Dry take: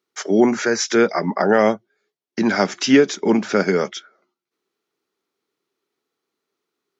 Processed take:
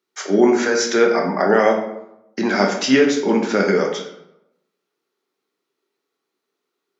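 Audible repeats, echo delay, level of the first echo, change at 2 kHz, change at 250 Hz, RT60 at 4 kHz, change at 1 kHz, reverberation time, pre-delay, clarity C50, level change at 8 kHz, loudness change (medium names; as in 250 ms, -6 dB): no echo, no echo, no echo, +1.5 dB, -0.5 dB, 0.50 s, +1.5 dB, 0.85 s, 15 ms, 5.5 dB, no reading, +1.0 dB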